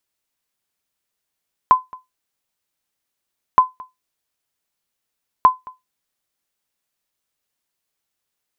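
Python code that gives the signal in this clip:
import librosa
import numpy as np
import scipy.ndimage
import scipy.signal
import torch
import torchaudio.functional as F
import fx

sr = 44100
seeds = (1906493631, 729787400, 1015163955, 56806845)

y = fx.sonar_ping(sr, hz=1020.0, decay_s=0.18, every_s=1.87, pings=3, echo_s=0.22, echo_db=-24.5, level_db=-2.0)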